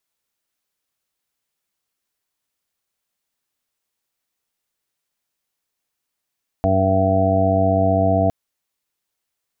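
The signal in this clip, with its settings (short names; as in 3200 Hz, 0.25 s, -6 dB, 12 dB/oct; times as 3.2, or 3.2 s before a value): steady additive tone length 1.66 s, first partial 95.5 Hz, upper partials -3.5/-3/-17/-6/-17/3/-6 dB, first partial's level -20 dB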